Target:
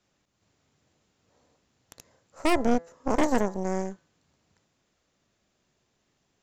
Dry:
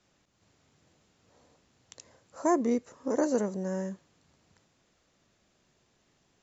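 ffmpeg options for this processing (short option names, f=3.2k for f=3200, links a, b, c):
-af "aeval=exprs='0.211*(cos(1*acos(clip(val(0)/0.211,-1,1)))-cos(1*PI/2))+0.0668*(cos(6*acos(clip(val(0)/0.211,-1,1)))-cos(6*PI/2))+0.00944*(cos(7*acos(clip(val(0)/0.211,-1,1)))-cos(7*PI/2))':c=same,bandreject=f=168.1:t=h:w=4,bandreject=f=336.2:t=h:w=4,bandreject=f=504.3:t=h:w=4,bandreject=f=672.4:t=h:w=4,bandreject=f=840.5:t=h:w=4,bandreject=f=1.0086k:t=h:w=4,bandreject=f=1.1767k:t=h:w=4,bandreject=f=1.3448k:t=h:w=4,bandreject=f=1.5129k:t=h:w=4,bandreject=f=1.681k:t=h:w=4,bandreject=f=1.8491k:t=h:w=4,bandreject=f=2.0172k:t=h:w=4"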